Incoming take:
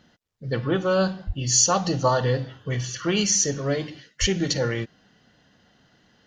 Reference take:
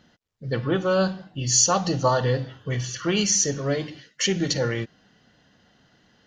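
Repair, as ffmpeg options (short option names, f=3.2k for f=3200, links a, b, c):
-filter_complex "[0:a]asplit=3[a][b][c];[a]afade=t=out:st=1.26:d=0.02[d];[b]highpass=f=140:w=0.5412,highpass=f=140:w=1.3066,afade=t=in:st=1.26:d=0.02,afade=t=out:st=1.38:d=0.02[e];[c]afade=t=in:st=1.38:d=0.02[f];[d][e][f]amix=inputs=3:normalize=0,asplit=3[g][h][i];[g]afade=t=out:st=4.2:d=0.02[j];[h]highpass=f=140:w=0.5412,highpass=f=140:w=1.3066,afade=t=in:st=4.2:d=0.02,afade=t=out:st=4.32:d=0.02[k];[i]afade=t=in:st=4.32:d=0.02[l];[j][k][l]amix=inputs=3:normalize=0"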